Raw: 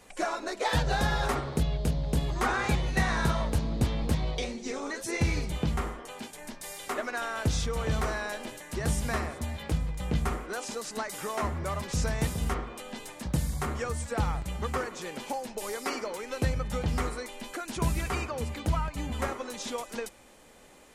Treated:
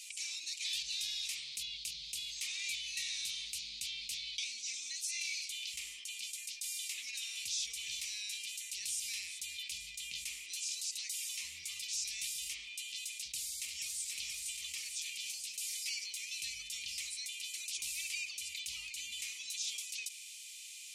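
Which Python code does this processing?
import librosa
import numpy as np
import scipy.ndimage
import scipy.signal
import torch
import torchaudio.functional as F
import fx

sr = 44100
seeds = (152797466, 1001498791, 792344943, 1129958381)

y = fx.highpass(x, sr, hz=1200.0, slope=12, at=(4.92, 5.74))
y = fx.echo_throw(y, sr, start_s=13.2, length_s=0.88, ms=480, feedback_pct=60, wet_db=-4.5)
y = scipy.signal.sosfilt(scipy.signal.ellip(4, 1.0, 40, 2400.0, 'highpass', fs=sr, output='sos'), y)
y = fx.peak_eq(y, sr, hz=5700.0, db=7.0, octaves=2.2)
y = fx.env_flatten(y, sr, amount_pct=50)
y = y * 10.0 ** (-7.0 / 20.0)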